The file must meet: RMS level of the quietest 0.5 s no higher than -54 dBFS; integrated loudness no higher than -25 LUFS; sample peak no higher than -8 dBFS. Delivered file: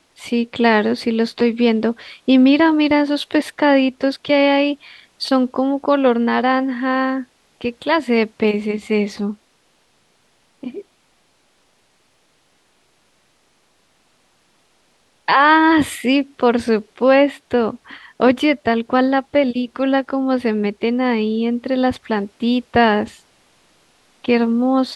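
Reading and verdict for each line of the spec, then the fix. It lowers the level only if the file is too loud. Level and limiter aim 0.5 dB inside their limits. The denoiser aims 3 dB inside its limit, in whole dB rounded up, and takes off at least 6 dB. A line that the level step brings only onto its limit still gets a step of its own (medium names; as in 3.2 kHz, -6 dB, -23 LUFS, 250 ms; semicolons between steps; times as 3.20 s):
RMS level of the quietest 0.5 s -60 dBFS: pass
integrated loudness -17.5 LUFS: fail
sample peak -2.0 dBFS: fail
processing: trim -8 dB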